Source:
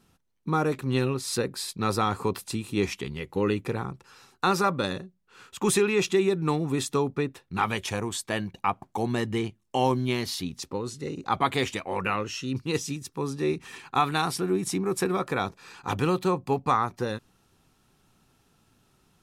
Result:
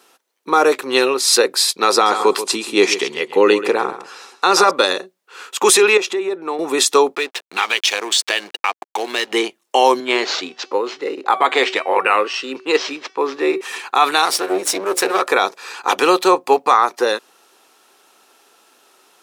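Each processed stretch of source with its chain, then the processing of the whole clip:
1.92–4.71 LPF 9900 Hz + low shelf 260 Hz +7 dB + feedback echo 0.135 s, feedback 16%, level -13 dB
5.97–6.59 high shelf 2700 Hz -10.5 dB + compressor 3:1, threshold -31 dBFS + HPF 190 Hz
7.15–9.33 weighting filter D + compressor 2.5:1, threshold -33 dBFS + backlash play -40 dBFS
10–13.61 de-hum 380.4 Hz, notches 36 + careless resampling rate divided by 4×, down none, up hold + BPF 180–3300 Hz
14.25–15.22 half-wave gain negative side -12 dB + notches 60/120/180/240/300/360/420/480/540 Hz
whole clip: HPF 390 Hz 24 dB/oct; dynamic EQ 5000 Hz, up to +4 dB, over -44 dBFS, Q 1; maximiser +16 dB; gain -1 dB

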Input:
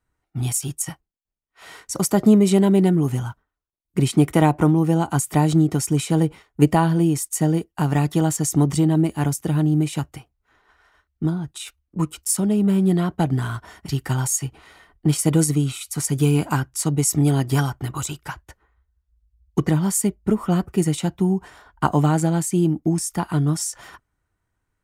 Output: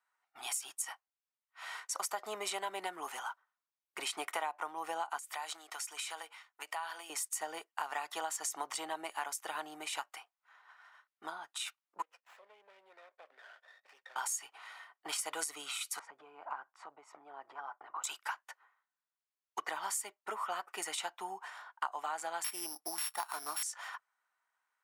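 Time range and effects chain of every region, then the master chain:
5.18–7.1 HPF 1400 Hz 6 dB/oct + compressor 5:1, threshold -30 dBFS
12.02–14.16 vowel filter e + compressor 2.5:1, threshold -44 dBFS + running maximum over 9 samples
15.99–18.04 LPF 1100 Hz + compressor 8:1, threshold -28 dBFS
22.44–23.63 sample sorter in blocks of 8 samples + resonant high shelf 7300 Hz +6 dB, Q 3
whole clip: HPF 870 Hz 24 dB/oct; tilt -2.5 dB/oct; compressor 6:1, threshold -35 dBFS; gain +1 dB

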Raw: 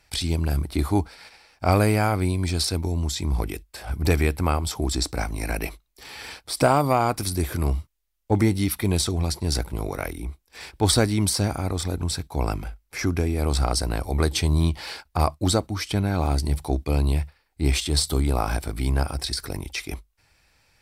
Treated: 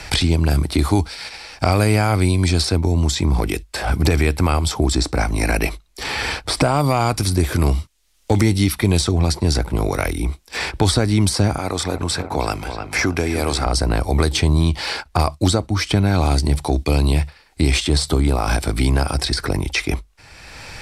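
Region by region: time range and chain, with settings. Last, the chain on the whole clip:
11.58–13.66 HPF 470 Hz 6 dB/oct + dark delay 0.304 s, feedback 52%, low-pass 2900 Hz, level -12 dB
whole clip: LPF 9300 Hz 12 dB/oct; maximiser +12.5 dB; three-band squash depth 70%; gain -5.5 dB

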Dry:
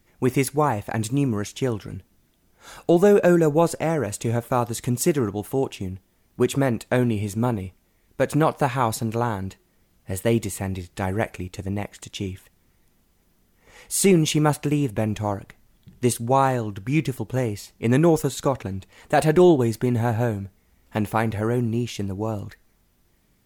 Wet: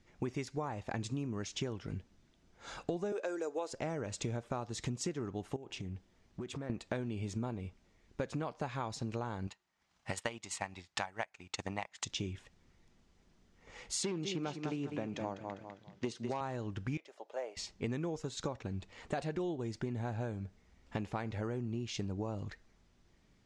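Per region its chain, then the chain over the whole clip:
3.12–3.73 HPF 350 Hz 24 dB/oct + high shelf 6400 Hz +7 dB
5.56–6.7 compressor 16:1, threshold -33 dBFS + Doppler distortion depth 0.16 ms
9.47–12.05 resonant low shelf 620 Hz -9.5 dB, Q 1.5 + transient shaper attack +11 dB, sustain -9 dB + HPF 120 Hz 6 dB/oct
14.03–16.41 feedback echo 0.201 s, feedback 27%, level -9 dB + overloaded stage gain 12 dB + BPF 170–5900 Hz
16.97–17.57 ladder high-pass 540 Hz, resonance 60% + high shelf 8900 Hz -6 dB
whole clip: LPF 6800 Hz 24 dB/oct; dynamic EQ 5300 Hz, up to +4 dB, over -44 dBFS, Q 1.1; compressor 12:1, threshold -30 dBFS; gain -4 dB

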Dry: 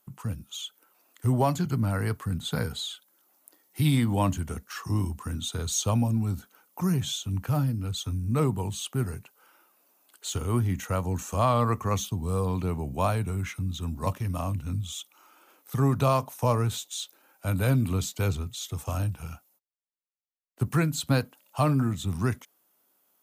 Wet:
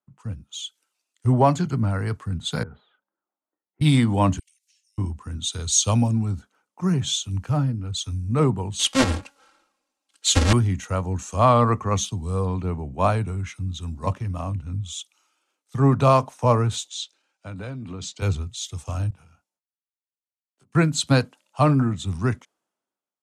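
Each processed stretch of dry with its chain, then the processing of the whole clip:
2.63–3.81 LPF 1600 Hz 24 dB/oct + compressor 4:1, threshold -39 dBFS
4.39–4.98 steep high-pass 2300 Hz 48 dB/oct + high shelf 4800 Hz +7.5 dB + compressor 20:1, threshold -52 dBFS
8.79–10.53 half-waves squared off + comb 3.7 ms, depth 98% + de-hum 282.1 Hz, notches 12
16.89–18.22 BPF 110–6000 Hz + compressor 16:1, threshold -28 dBFS
19.1–20.75 low shelf 100 Hz -11.5 dB + compressor, threshold -47 dBFS + doubler 21 ms -4.5 dB
whole clip: LPF 8700 Hz 24 dB/oct; three-band expander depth 70%; gain +3.5 dB

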